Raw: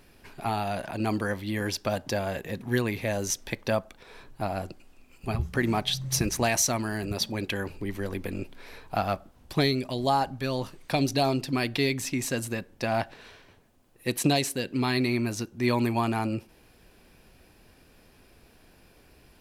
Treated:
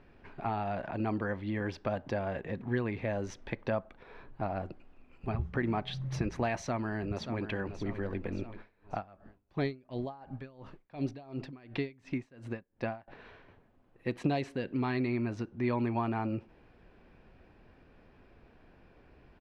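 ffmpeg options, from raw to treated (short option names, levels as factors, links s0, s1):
-filter_complex "[0:a]asplit=2[s0][s1];[s1]afade=t=in:st=6.58:d=0.01,afade=t=out:st=7.41:d=0.01,aecho=0:1:580|1160|1740|2320|2900|3480:0.281838|0.155011|0.0852561|0.0468908|0.02579|0.0141845[s2];[s0][s2]amix=inputs=2:normalize=0,asettb=1/sr,asplit=3[s3][s4][s5];[s3]atrim=end=8.574[s6];[s4]atrim=start=8.57:end=13.08,asetpts=PTS-STARTPTS,afade=t=in:d=0.004:c=qsin,afade=t=out:st=4.506:d=0.004:c=qsin,aeval=exprs='val(0)*pow(10,-27*(0.5-0.5*cos(2*PI*2.8*n/s))/20)':c=same[s7];[s5]atrim=start=13.076[s8];[s6][s7]acrossfade=d=0.004:c1=hsin:c2=qsin[s9];[s9][s8]acrossfade=d=0.004:c1=qsin:c2=hsin,lowpass=2000,acompressor=threshold=0.0251:ratio=1.5,volume=0.841"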